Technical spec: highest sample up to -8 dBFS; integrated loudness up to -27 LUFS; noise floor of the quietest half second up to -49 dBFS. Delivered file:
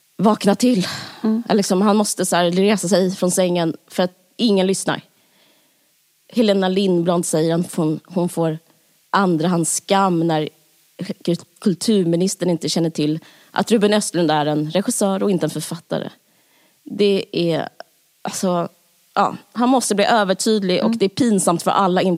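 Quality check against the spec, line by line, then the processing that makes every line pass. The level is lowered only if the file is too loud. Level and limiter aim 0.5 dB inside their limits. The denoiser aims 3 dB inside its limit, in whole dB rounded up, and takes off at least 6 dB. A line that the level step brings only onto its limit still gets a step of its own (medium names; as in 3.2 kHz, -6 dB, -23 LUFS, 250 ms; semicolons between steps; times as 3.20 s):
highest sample -1.5 dBFS: fail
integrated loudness -18.5 LUFS: fail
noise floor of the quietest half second -61 dBFS: pass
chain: trim -9 dB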